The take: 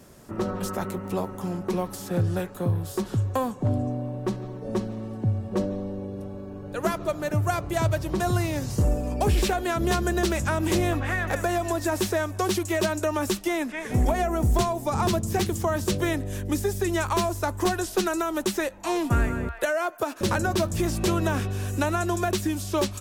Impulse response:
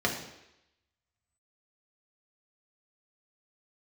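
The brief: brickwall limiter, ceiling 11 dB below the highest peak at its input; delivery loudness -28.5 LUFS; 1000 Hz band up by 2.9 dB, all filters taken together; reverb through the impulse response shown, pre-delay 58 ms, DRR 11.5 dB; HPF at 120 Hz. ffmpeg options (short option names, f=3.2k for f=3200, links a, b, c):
-filter_complex "[0:a]highpass=120,equalizer=f=1k:t=o:g=4,alimiter=limit=-21dB:level=0:latency=1,asplit=2[a][b];[1:a]atrim=start_sample=2205,adelay=58[c];[b][c]afir=irnorm=-1:irlink=0,volume=-22dB[d];[a][d]amix=inputs=2:normalize=0,volume=1.5dB"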